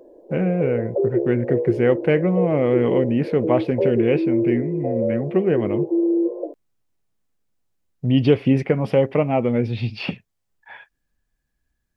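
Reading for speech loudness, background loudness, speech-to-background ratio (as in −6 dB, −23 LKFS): −21.5 LKFS, −24.0 LKFS, 2.5 dB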